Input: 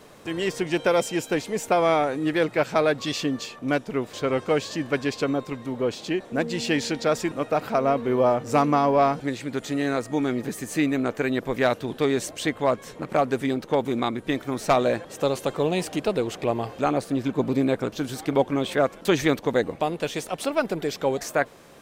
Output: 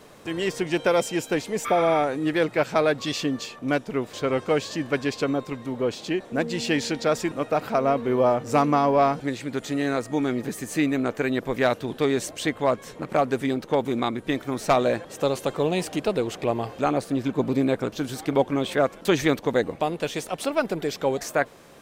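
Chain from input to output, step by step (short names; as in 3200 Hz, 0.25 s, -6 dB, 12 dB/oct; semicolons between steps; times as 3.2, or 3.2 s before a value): spectral repair 1.68–1.96, 1000–11000 Hz after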